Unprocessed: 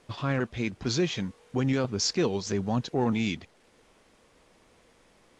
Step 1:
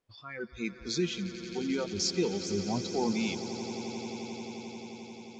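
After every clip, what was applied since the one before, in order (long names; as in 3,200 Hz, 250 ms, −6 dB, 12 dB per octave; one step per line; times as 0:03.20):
noise reduction from a noise print of the clip's start 22 dB
echo that builds up and dies away 88 ms, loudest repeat 8, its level −16 dB
level −3 dB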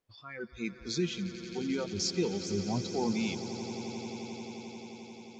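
dynamic equaliser 120 Hz, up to +5 dB, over −47 dBFS, Q 1.3
level −2 dB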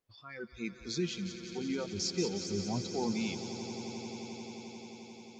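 delay with a high-pass on its return 182 ms, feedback 63%, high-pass 4,500 Hz, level −5 dB
level −2.5 dB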